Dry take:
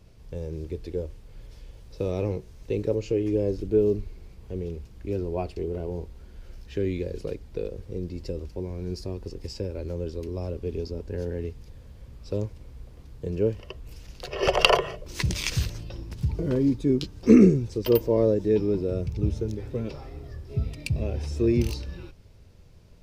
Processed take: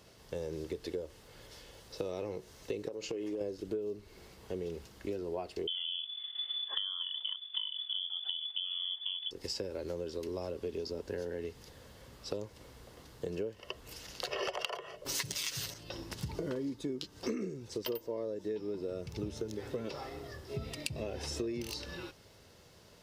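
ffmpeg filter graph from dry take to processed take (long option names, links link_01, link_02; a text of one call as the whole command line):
ffmpeg -i in.wav -filter_complex "[0:a]asettb=1/sr,asplit=3[link_01][link_02][link_03];[link_01]atrim=end=2.884[link_04];[link_02]atrim=start=2.88:end=3.41,asetpts=PTS-STARTPTS,afade=type=in:duration=0.004:curve=qsin,afade=type=out:start_time=0.526:duration=0.004:curve=qsin,agate=range=-33dB:threshold=-37dB:ratio=3:release=100:detection=peak,equalizer=frequency=98:width_type=o:width=0.35:gain=-12,acompressor=threshold=-31dB:ratio=5:attack=3.2:release=140:knee=1:detection=peak[link_05];[link_03]atrim=start=3.406[link_06];[link_04][link_05]acrossfade=duration=0.004:curve1=hsin:curve2=qsin[link_07];[link_07][link_06]acrossfade=duration=0.004:curve1=qsin:curve2=hsin,asettb=1/sr,asplit=3[link_08][link_09][link_10];[link_08]atrim=end=5.674[link_11];[link_09]atrim=start=5.67:end=9.31,asetpts=PTS-STARTPTS,afade=type=in:duration=0.004:curve=qsin,afade=type=out:start_time=3.636:duration=0.004:curve=qsin,agate=range=-33dB:threshold=-41dB:ratio=3:release=100:detection=peak,lowpass=frequency=3000:width_type=q:width=0.5098,lowpass=frequency=3000:width_type=q:width=0.6013,lowpass=frequency=3000:width_type=q:width=0.9,lowpass=frequency=3000:width_type=q:width=2.563,afreqshift=-3500[link_12];[link_10]atrim=start=9.306[link_13];[link_11][link_12]acrossfade=duration=0.004:curve1=hsin:curve2=qsin[link_14];[link_14][link_13]acrossfade=duration=0.004:curve1=qsin:curve2=hsin,asettb=1/sr,asplit=3[link_15][link_16][link_17];[link_15]atrim=end=15.054[link_18];[link_16]atrim=start=15.05:end=15.74,asetpts=PTS-STARTPTS,afade=type=in:duration=0.004:curve=qsin,afade=type=out:start_time=0.686:duration=0.004:curve=qsin,highshelf=frequency=8500:gain=7.5,aecho=1:1:7.3:0.8,atrim=end_sample=30429,acontrast=61[link_19];[link_17]atrim=start=15.736[link_20];[link_18][link_19]acrossfade=duration=0.004:curve1=hsin:curve2=qsin[link_21];[link_21][link_20]acrossfade=duration=0.004:curve1=qsin:curve2=hsin,highpass=frequency=670:poles=1,bandreject=frequency=2400:width=9.4,acompressor=threshold=-40dB:ratio=16,volume=6.5dB" out.wav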